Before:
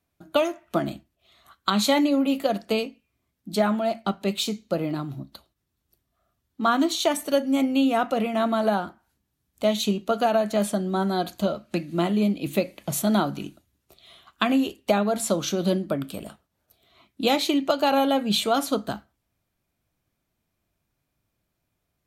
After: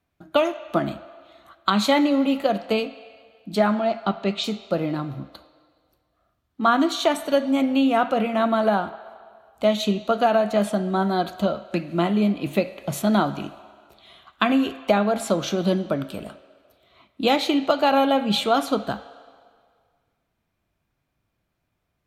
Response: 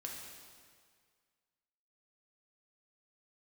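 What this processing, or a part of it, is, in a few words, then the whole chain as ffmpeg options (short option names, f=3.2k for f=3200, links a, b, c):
filtered reverb send: -filter_complex "[0:a]asettb=1/sr,asplit=3[a][b][c];[a]atrim=end=3.754[d];[b]atrim=start=3.75:end=4.44,asetpts=PTS-STARTPTS,afade=t=in:d=0.004:c=qsin,afade=t=out:st=0.686:d=0.004:c=qsin,lowpass=f=6.7k:w=0.5412,lowpass=f=6.7k:w=1.3066[e];[c]atrim=start=4.436[f];[d][e]acrossfade=d=0.004:c1=hsin:c2=qsin[g];[g][f]acrossfade=d=0.004:c1=qsin:c2=hsin,asplit=2[h][i];[i]highpass=590,lowpass=4.7k[j];[1:a]atrim=start_sample=2205[k];[j][k]afir=irnorm=-1:irlink=0,volume=-6dB[l];[h][l]amix=inputs=2:normalize=0,highshelf=f=5k:g=-9,volume=2dB"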